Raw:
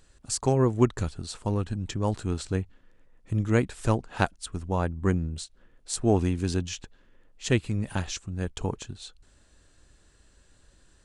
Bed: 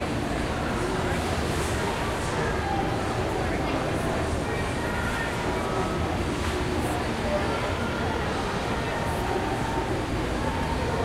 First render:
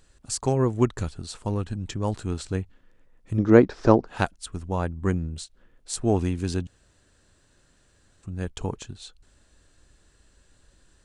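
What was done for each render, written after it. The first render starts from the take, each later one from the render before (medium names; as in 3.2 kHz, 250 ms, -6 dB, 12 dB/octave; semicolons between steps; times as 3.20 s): 3.38–4.07 s: FFT filter 100 Hz 0 dB, 350 Hz +12 dB, 910 Hz +8 dB, 1.6 kHz +5 dB, 2.9 kHz -4 dB, 5.4 kHz +5 dB, 7.9 kHz -17 dB, 12 kHz -27 dB; 6.67–8.23 s: room tone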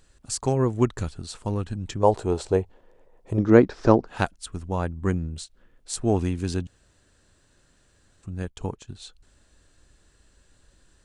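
2.03–3.39 s: high-order bell 600 Hz +12.5 dB; 8.42–8.88 s: upward expansion, over -46 dBFS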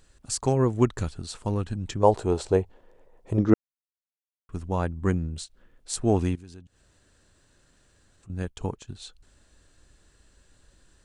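3.54–4.49 s: mute; 6.35–8.30 s: compression 2:1, threshold -57 dBFS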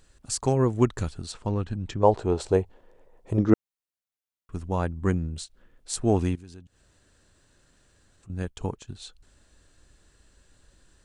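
1.32–2.40 s: distance through air 82 m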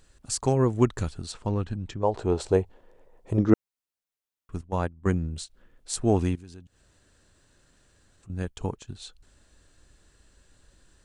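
1.67–2.14 s: fade out, to -7.5 dB; 4.61–5.07 s: gate -27 dBFS, range -15 dB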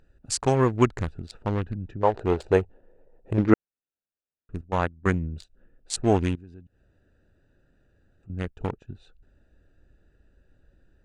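local Wiener filter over 41 samples; peaking EQ 2.1 kHz +10 dB 2.7 oct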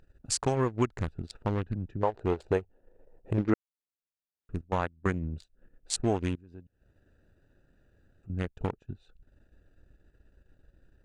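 compression 2.5:1, threshold -26 dBFS, peak gain reduction 10.5 dB; transient shaper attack 0 dB, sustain -8 dB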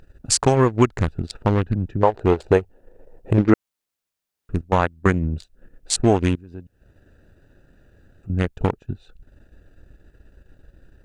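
trim +11 dB; peak limiter -1 dBFS, peak gain reduction 3 dB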